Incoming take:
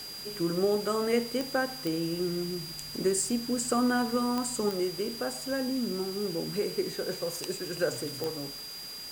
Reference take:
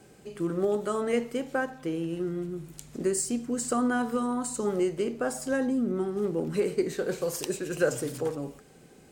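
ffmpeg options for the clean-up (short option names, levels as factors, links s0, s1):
-af "adeclick=t=4,bandreject=f=4800:w=30,afwtdn=0.005,asetnsamples=n=441:p=0,asendcmd='4.69 volume volume 4dB',volume=1"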